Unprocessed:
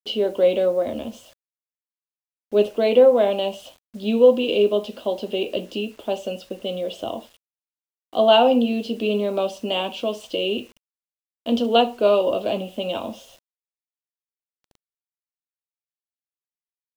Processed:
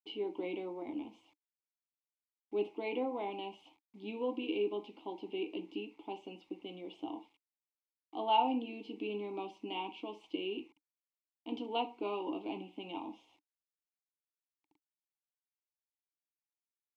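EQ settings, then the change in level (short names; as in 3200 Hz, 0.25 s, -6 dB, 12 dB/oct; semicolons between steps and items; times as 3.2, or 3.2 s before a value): vowel filter u; bell 230 Hz -13.5 dB 0.27 oct; +1.5 dB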